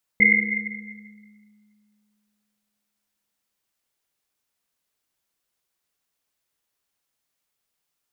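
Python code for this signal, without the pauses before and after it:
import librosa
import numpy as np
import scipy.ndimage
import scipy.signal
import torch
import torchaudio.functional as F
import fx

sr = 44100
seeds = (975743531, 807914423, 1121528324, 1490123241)

y = fx.risset_drum(sr, seeds[0], length_s=3.54, hz=210.0, decay_s=2.61, noise_hz=2100.0, noise_width_hz=120.0, noise_pct=75)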